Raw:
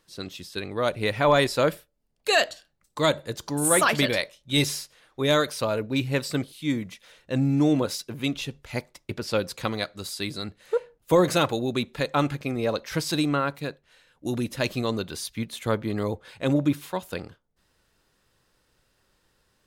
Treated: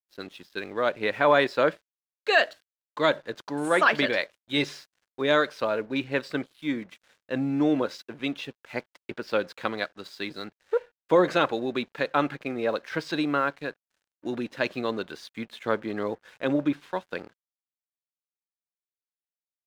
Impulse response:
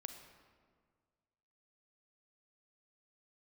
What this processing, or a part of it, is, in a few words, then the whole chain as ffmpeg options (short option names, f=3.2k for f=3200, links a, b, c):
pocket radio on a weak battery: -af "highpass=250,lowpass=3.3k,aeval=exprs='sgn(val(0))*max(abs(val(0))-0.00211,0)':c=same,equalizer=f=1.6k:t=o:w=0.32:g=5"